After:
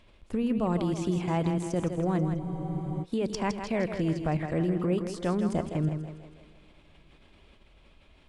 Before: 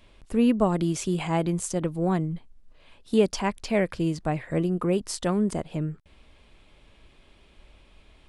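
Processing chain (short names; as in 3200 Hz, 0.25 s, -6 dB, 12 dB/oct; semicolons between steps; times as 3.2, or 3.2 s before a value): level quantiser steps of 15 dB; high shelf 8000 Hz -9.5 dB; on a send: split-band echo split 310 Hz, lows 84 ms, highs 0.162 s, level -7.5 dB; on the sum: two-slope reverb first 0.36 s, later 4.9 s, from -18 dB, DRR 19.5 dB; spectral freeze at 2.41, 0.61 s; gain +3 dB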